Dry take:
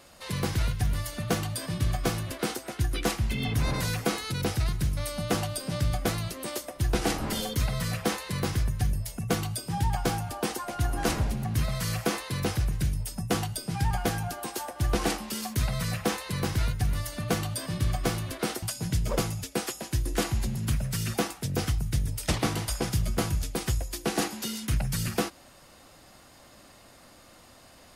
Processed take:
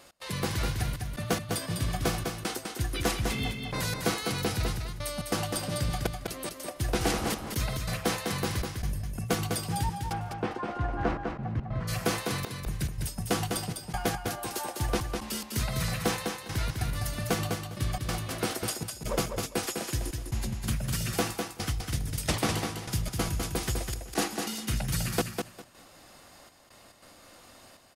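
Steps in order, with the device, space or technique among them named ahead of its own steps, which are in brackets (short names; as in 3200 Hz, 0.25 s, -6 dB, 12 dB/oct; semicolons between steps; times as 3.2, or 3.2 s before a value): 10.12–11.87 LPF 2400 Hz -> 1200 Hz 12 dB/oct; low shelf 180 Hz -5 dB; trance gate with a delay (step gate "x.xxxxxxx..x" 141 bpm -24 dB; feedback echo 0.202 s, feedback 20%, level -5 dB)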